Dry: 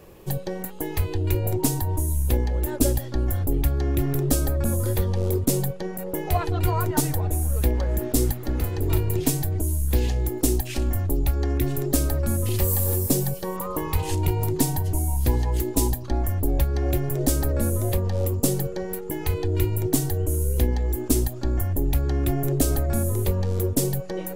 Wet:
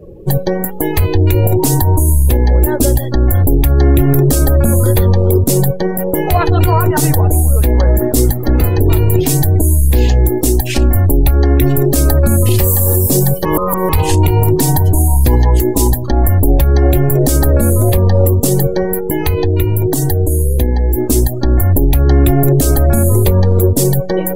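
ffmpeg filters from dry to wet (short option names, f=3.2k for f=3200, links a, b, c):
-filter_complex "[0:a]asettb=1/sr,asplit=3[a][b][c];[a]atrim=end=18.844[d];[b]atrim=start=18.84:end=20.98,asetpts=PTS-STARTPTS,afade=t=in:d=0.004:c=qsin,afade=t=out:st=2.136:d=0.004:c=qsin,acompressor=threshold=-25dB:ratio=2.5:attack=3.2:release=140:knee=1:detection=peak[e];[c]atrim=start=20.976[f];[d][e]acrossfade=d=0.004:c1=hsin:c2=qsin[g];[g][f]acrossfade=d=0.004:c1=qsin:c2=hsin,asplit=3[h][i][j];[h]atrim=end=13.452[k];[i]atrim=start=13.448:end=13.892,asetpts=PTS-STARTPTS,areverse[l];[j]atrim=start=13.888[m];[k][l]acrossfade=d=0.004:c1=hsin:c2=hsin[n];[n][m]acrossfade=d=0.004:c1=hsin:c2=hsin,afftdn=nr=27:nf=-44,alimiter=level_in=16dB:limit=-1dB:release=50:level=0:latency=1,volume=-1dB"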